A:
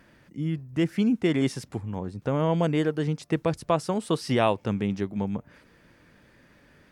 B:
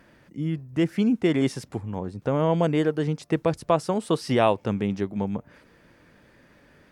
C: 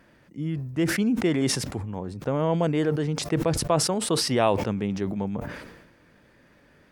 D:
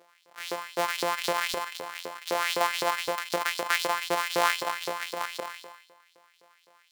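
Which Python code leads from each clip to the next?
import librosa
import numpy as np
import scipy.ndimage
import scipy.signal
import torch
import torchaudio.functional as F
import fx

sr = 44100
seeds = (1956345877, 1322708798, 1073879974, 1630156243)

y1 = fx.peak_eq(x, sr, hz=580.0, db=3.0, octaves=2.2)
y2 = fx.sustainer(y1, sr, db_per_s=51.0)
y2 = y2 * 10.0 ** (-2.0 / 20.0)
y3 = np.r_[np.sort(y2[:len(y2) // 256 * 256].reshape(-1, 256), axis=1).ravel(), y2[len(y2) // 256 * 256:]]
y3 = fx.rev_schroeder(y3, sr, rt60_s=0.85, comb_ms=30, drr_db=13.5)
y3 = fx.filter_lfo_highpass(y3, sr, shape='saw_up', hz=3.9, low_hz=420.0, high_hz=4800.0, q=2.6)
y3 = y3 * 10.0 ** (-2.5 / 20.0)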